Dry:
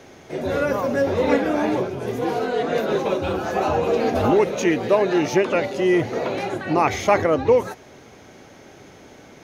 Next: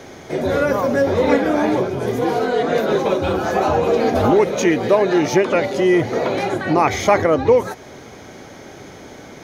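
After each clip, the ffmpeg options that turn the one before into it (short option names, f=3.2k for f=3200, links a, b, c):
-filter_complex "[0:a]bandreject=f=2.7k:w=11,asplit=2[a][b];[b]acompressor=threshold=-27dB:ratio=6,volume=0.5dB[c];[a][c]amix=inputs=2:normalize=0,volume=1dB"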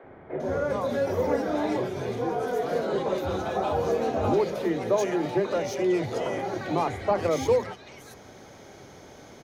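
-filter_complex "[0:a]acrossover=split=940[a][b];[b]asoftclip=type=tanh:threshold=-23.5dB[c];[a][c]amix=inputs=2:normalize=0,acrossover=split=270|2000[d][e][f];[d]adelay=30[g];[f]adelay=400[h];[g][e][h]amix=inputs=3:normalize=0,volume=-8dB"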